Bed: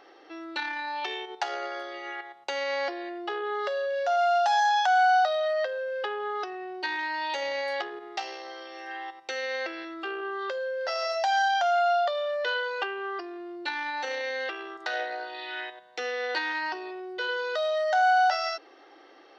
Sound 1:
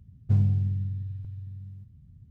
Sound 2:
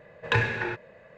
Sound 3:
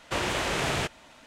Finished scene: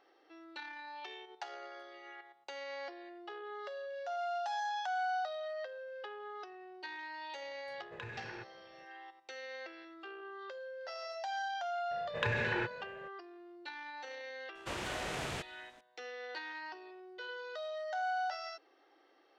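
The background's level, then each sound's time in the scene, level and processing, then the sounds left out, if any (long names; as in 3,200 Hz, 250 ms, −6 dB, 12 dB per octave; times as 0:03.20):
bed −14 dB
0:07.68: mix in 2 −13.5 dB + downward compressor, threshold −28 dBFS
0:11.91: mix in 2 −2.5 dB + downward compressor, threshold −26 dBFS
0:14.55: mix in 3 −11.5 dB
not used: 1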